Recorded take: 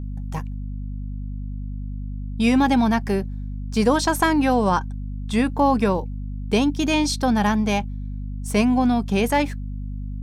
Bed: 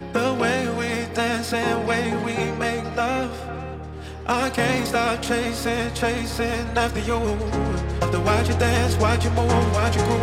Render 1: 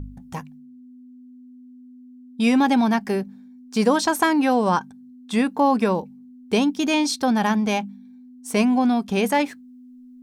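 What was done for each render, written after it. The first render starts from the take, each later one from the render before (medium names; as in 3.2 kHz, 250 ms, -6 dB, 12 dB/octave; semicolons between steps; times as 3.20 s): de-hum 50 Hz, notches 4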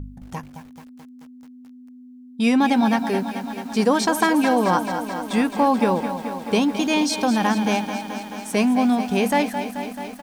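echo from a far wall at 37 m, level -15 dB; bit-crushed delay 217 ms, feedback 80%, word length 7-bit, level -10 dB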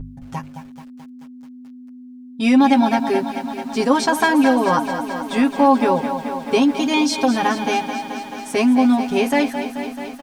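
treble shelf 8.9 kHz -7 dB; comb 7.4 ms, depth 93%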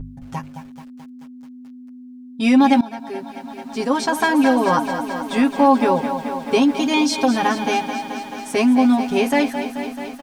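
2.81–4.60 s: fade in, from -17 dB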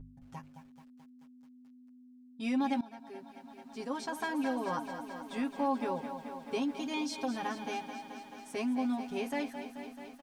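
trim -17.5 dB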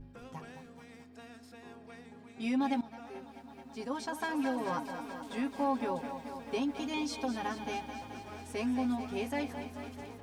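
add bed -30 dB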